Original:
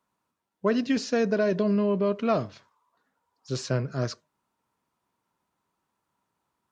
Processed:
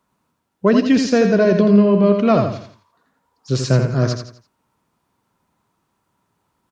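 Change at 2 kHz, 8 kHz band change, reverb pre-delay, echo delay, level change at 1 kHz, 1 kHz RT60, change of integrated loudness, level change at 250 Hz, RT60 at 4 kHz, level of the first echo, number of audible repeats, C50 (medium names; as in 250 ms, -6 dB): +8.5 dB, no reading, no reverb, 84 ms, +9.0 dB, no reverb, +11.0 dB, +12.0 dB, no reverb, -6.0 dB, 4, no reverb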